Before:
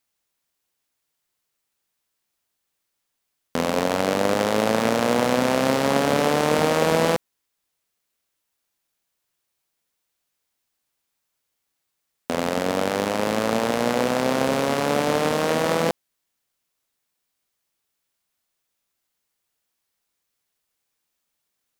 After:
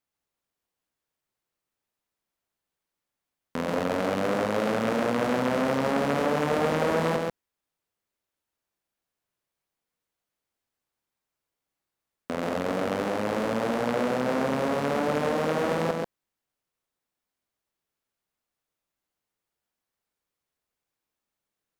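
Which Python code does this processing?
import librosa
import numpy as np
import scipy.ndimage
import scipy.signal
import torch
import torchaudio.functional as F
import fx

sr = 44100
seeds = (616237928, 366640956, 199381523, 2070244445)

y = fx.high_shelf(x, sr, hz=2100.0, db=-9.5)
y = y + 10.0 ** (-3.5 / 20.0) * np.pad(y, (int(135 * sr / 1000.0), 0))[:len(y)]
y = fx.transformer_sat(y, sr, knee_hz=960.0)
y = F.gain(torch.from_numpy(y), -3.5).numpy()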